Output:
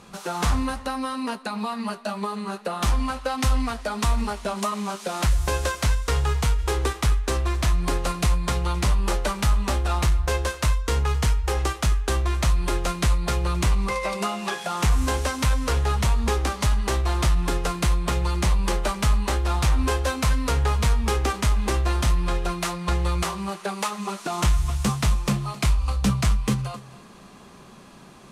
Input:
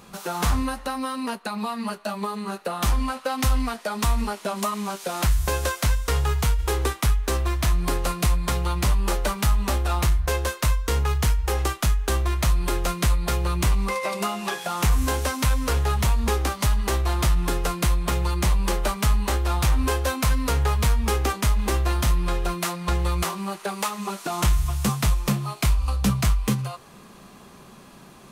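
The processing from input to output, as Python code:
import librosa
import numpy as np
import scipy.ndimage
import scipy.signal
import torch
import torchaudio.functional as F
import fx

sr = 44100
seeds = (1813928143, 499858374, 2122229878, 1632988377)

p1 = scipy.signal.sosfilt(scipy.signal.butter(2, 9800.0, 'lowpass', fs=sr, output='sos'), x)
y = p1 + fx.echo_single(p1, sr, ms=264, db=-18.5, dry=0)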